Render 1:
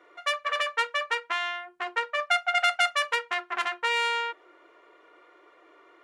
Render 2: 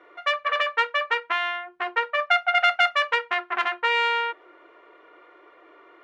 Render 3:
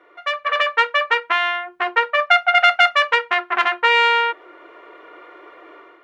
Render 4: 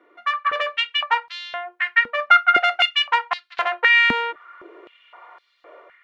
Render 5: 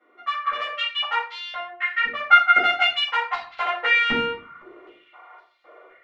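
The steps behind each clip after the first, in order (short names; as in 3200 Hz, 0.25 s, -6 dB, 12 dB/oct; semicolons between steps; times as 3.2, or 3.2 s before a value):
LPF 3300 Hz 12 dB/oct; gain +4.5 dB
AGC gain up to 9.5 dB
stepped high-pass 3.9 Hz 240–4400 Hz; gain -6.5 dB
shoebox room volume 360 m³, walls furnished, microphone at 6.8 m; gain -13.5 dB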